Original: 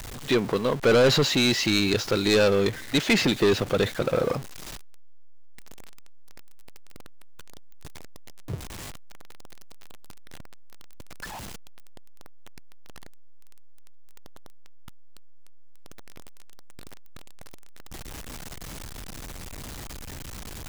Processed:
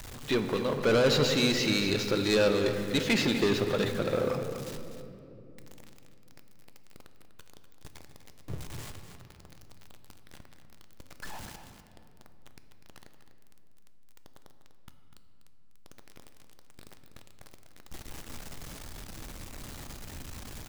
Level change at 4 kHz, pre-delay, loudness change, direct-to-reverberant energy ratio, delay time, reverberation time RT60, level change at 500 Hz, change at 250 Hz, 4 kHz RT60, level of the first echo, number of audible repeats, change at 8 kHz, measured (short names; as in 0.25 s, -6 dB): -4.5 dB, 3 ms, -4.5 dB, 5.5 dB, 0.247 s, 2.8 s, -4.5 dB, -4.0 dB, 1.5 s, -10.5 dB, 1, -5.0 dB